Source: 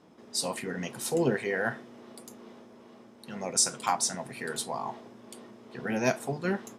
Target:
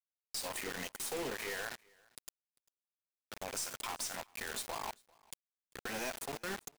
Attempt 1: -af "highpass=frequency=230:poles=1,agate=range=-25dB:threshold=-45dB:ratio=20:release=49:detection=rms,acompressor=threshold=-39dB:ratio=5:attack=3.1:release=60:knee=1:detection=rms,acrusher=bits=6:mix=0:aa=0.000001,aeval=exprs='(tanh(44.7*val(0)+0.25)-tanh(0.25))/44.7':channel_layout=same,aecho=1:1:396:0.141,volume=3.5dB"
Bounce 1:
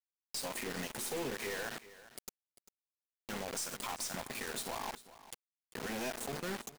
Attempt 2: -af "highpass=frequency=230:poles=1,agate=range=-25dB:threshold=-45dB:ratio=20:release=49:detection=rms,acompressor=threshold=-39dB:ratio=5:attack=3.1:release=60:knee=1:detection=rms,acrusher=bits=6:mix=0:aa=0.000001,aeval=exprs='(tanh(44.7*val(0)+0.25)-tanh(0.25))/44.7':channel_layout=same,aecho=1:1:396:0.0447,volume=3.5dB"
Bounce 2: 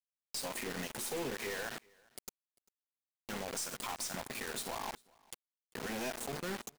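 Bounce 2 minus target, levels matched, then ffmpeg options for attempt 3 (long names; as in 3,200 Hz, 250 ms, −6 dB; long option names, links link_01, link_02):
250 Hz band +4.0 dB
-af "highpass=frequency=770:poles=1,agate=range=-25dB:threshold=-45dB:ratio=20:release=49:detection=rms,acompressor=threshold=-39dB:ratio=5:attack=3.1:release=60:knee=1:detection=rms,acrusher=bits=6:mix=0:aa=0.000001,aeval=exprs='(tanh(44.7*val(0)+0.25)-tanh(0.25))/44.7':channel_layout=same,aecho=1:1:396:0.0447,volume=3.5dB"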